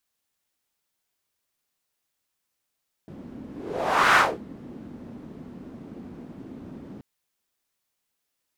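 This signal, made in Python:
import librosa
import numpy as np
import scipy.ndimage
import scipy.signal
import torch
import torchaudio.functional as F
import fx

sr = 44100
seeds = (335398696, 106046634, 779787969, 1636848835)

y = fx.whoosh(sr, seeds[0], length_s=3.93, peak_s=1.09, rise_s=0.74, fall_s=0.26, ends_hz=240.0, peak_hz=1400.0, q=2.5, swell_db=24.5)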